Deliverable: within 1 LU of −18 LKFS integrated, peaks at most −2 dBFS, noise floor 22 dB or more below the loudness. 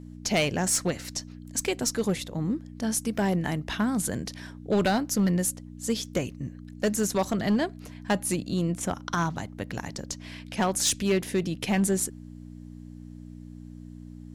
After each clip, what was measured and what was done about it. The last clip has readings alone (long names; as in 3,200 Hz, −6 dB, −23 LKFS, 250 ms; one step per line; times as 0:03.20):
share of clipped samples 0.8%; peaks flattened at −18.0 dBFS; mains hum 60 Hz; hum harmonics up to 300 Hz; level of the hum −40 dBFS; integrated loudness −28.0 LKFS; sample peak −18.0 dBFS; target loudness −18.0 LKFS
→ clipped peaks rebuilt −18 dBFS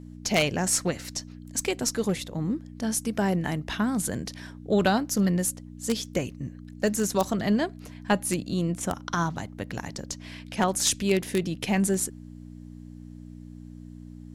share of clipped samples 0.0%; mains hum 60 Hz; hum harmonics up to 300 Hz; level of the hum −39 dBFS
→ hum removal 60 Hz, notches 5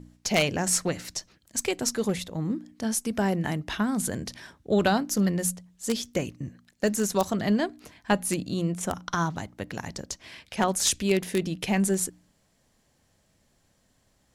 mains hum none found; integrated loudness −27.5 LKFS; sample peak −8.5 dBFS; target loudness −18.0 LKFS
→ level +9.5 dB
brickwall limiter −2 dBFS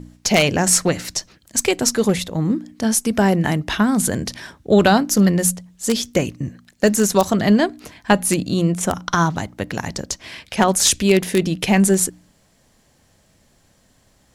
integrated loudness −18.5 LKFS; sample peak −2.0 dBFS; background noise floor −58 dBFS